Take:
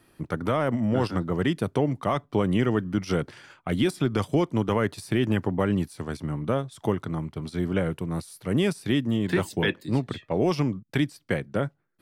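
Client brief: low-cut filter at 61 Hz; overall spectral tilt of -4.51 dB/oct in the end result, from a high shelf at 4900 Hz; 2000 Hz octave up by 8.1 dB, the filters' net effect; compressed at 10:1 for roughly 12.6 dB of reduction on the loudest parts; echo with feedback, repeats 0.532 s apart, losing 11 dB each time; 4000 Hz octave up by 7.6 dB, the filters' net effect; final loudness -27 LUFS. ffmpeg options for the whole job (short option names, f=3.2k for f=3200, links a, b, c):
-af "highpass=61,equalizer=f=2k:t=o:g=8.5,equalizer=f=4k:t=o:g=8,highshelf=f=4.9k:g=-3.5,acompressor=threshold=-30dB:ratio=10,aecho=1:1:532|1064|1596:0.282|0.0789|0.0221,volume=8dB"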